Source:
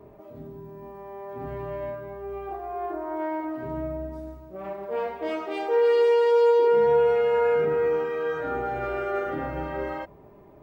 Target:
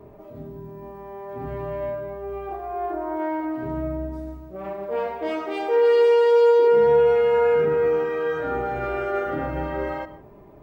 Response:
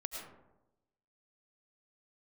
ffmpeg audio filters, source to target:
-filter_complex "[0:a]asplit=2[a][b];[1:a]atrim=start_sample=2205,afade=t=out:st=0.22:d=0.01,atrim=end_sample=10143,lowshelf=f=230:g=9.5[c];[b][c]afir=irnorm=-1:irlink=0,volume=-7.5dB[d];[a][d]amix=inputs=2:normalize=0"

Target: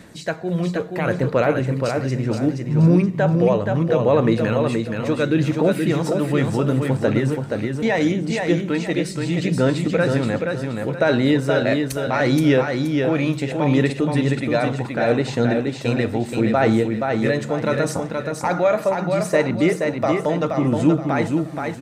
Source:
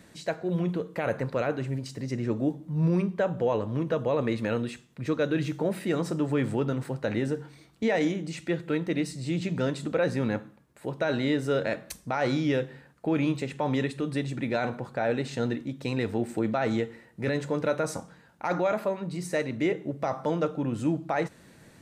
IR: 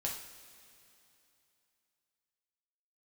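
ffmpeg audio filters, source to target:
-af "aphaser=in_gain=1:out_gain=1:delay=1.7:decay=0.34:speed=0.72:type=sinusoidal,aecho=1:1:475|950|1425|1900:0.596|0.203|0.0689|0.0234,volume=6.5dB"

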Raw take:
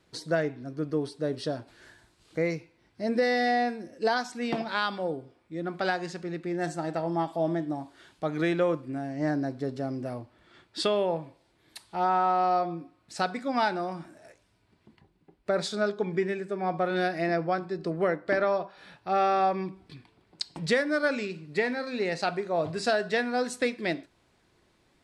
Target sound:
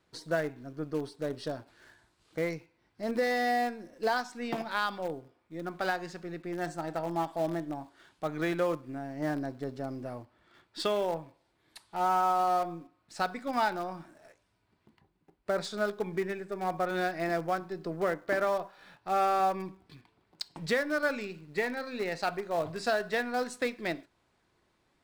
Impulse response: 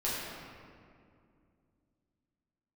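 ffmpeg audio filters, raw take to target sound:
-filter_complex "[0:a]equalizer=f=1.1k:t=o:w=1.5:g=4,asplit=2[a][b];[b]acrusher=bits=5:dc=4:mix=0:aa=0.000001,volume=-12dB[c];[a][c]amix=inputs=2:normalize=0,volume=-7dB"

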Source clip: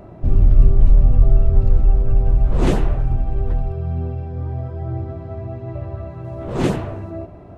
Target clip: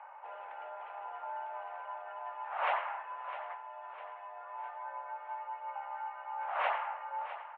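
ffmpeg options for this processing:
-filter_complex "[0:a]asettb=1/sr,asplit=3[a][b][c];[a]atrim=end=3.544[d];[b]atrim=start=3.54:end=4.26,asetpts=PTS-STARTPTS,afade=t=in:d=0.004:c=qsin,afade=t=out:st=0.716:d=0.004:c=qsin,acompressor=threshold=-21dB:ratio=6[e];[c]atrim=start=4.256[f];[d][e]acrossfade=d=0.004:c1=hsin:c2=qsin[g];[g][f]acrossfade=d=0.004:c1=qsin:c2=hsin,aecho=1:1:655|1310|1965|2620|3275:0.224|0.112|0.056|0.028|0.014,highpass=f=570:t=q:w=0.5412,highpass=f=570:t=q:w=1.307,lowpass=f=2.5k:t=q:w=0.5176,lowpass=f=2.5k:t=q:w=0.7071,lowpass=f=2.5k:t=q:w=1.932,afreqshift=220,volume=-3dB"

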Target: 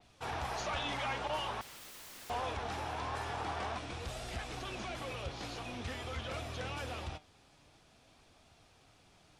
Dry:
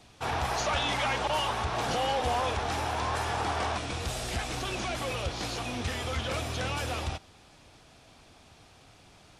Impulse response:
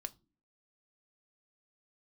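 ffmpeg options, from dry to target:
-filter_complex "[0:a]flanger=delay=1.4:depth=6:regen=80:speed=0.47:shape=sinusoidal,asettb=1/sr,asplit=3[a][b][c];[a]atrim=end=1.614[d];[b]atrim=start=1.61:end=2.3,asetpts=PTS-STARTPTS,afade=t=in:d=0.004:c=qsin,afade=t=out:st=0.686:d=0.004:c=qsin,aeval=exprs='(mod(112*val(0)+1,2)-1)/112':c=same[e];[c]atrim=start=2.296[f];[d][e]acrossfade=d=0.004:c1=hsin:c2=qsin[g];[g][f]acrossfade=d=0.004:c1=qsin:c2=hsin,adynamicequalizer=threshold=0.00316:dfrequency=4700:dqfactor=0.7:tfrequency=4700:tqfactor=0.7:attack=5:release=100:ratio=0.375:range=2.5:mode=cutabove:tftype=highshelf,volume=-3.5dB"

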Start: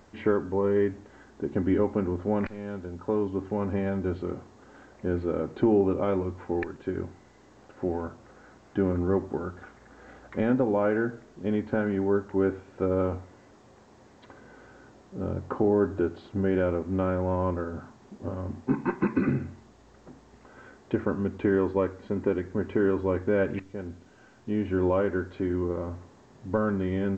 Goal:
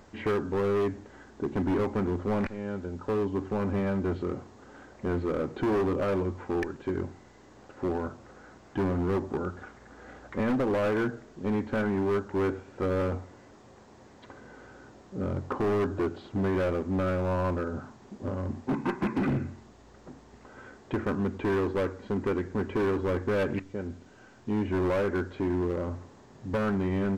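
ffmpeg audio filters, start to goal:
-af "volume=25dB,asoftclip=hard,volume=-25dB,volume=1.5dB"

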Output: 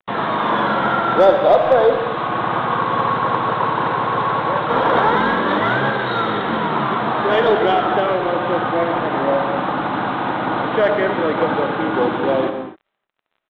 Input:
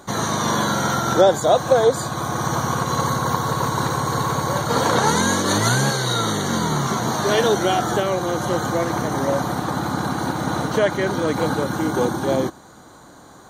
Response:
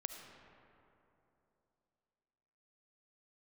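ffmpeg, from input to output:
-filter_complex "[0:a]aeval=exprs='val(0)+0.00631*sin(2*PI*1200*n/s)':c=same,acrossover=split=120[a][b];[a]acompressor=threshold=-43dB:ratio=6[c];[c][b]amix=inputs=2:normalize=0,bandreject=f=50:t=h:w=6,bandreject=f=100:t=h:w=6,bandreject=f=150:t=h:w=6,aresample=8000,acrusher=bits=4:mix=0:aa=0.5,aresample=44100,asplit=2[d][e];[e]highpass=f=720:p=1,volume=11dB,asoftclip=type=tanh:threshold=-3dB[f];[d][f]amix=inputs=2:normalize=0,lowpass=f=1.4k:p=1,volume=-6dB,asoftclip=type=hard:threshold=-6dB[g];[1:a]atrim=start_sample=2205,afade=t=out:st=0.31:d=0.01,atrim=end_sample=14112[h];[g][h]afir=irnorm=-1:irlink=0,volume=4dB"

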